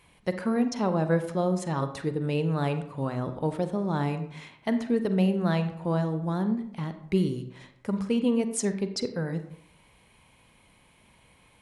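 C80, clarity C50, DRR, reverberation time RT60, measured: 13.0 dB, 10.5 dB, 9.0 dB, 0.70 s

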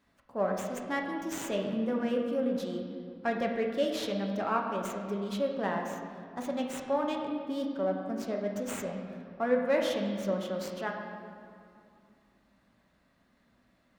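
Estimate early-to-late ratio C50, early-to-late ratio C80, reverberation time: 4.0 dB, 5.0 dB, 2.5 s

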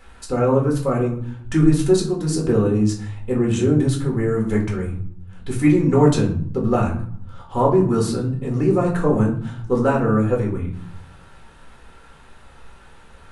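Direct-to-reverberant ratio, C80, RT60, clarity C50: −2.0 dB, 12.5 dB, 0.60 s, 8.0 dB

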